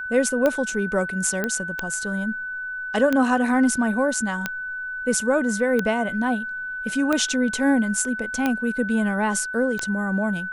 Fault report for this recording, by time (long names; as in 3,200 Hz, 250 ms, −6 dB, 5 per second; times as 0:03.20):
scratch tick 45 rpm −9 dBFS
whistle 1,500 Hz −28 dBFS
0:01.44: click −11 dBFS